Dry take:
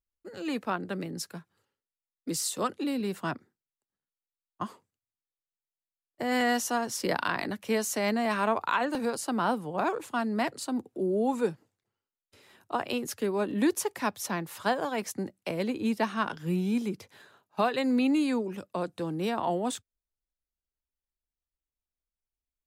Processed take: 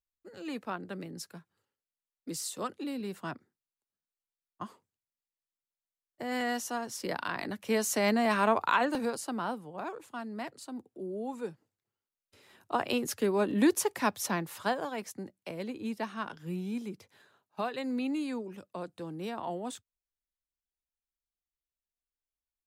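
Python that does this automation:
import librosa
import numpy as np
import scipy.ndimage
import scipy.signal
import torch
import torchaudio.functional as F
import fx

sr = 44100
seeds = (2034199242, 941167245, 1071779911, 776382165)

y = fx.gain(x, sr, db=fx.line((7.23, -6.0), (7.94, 1.0), (8.8, 1.0), (9.72, -10.0), (11.4, -10.0), (12.86, 1.0), (14.28, 1.0), (15.16, -7.5)))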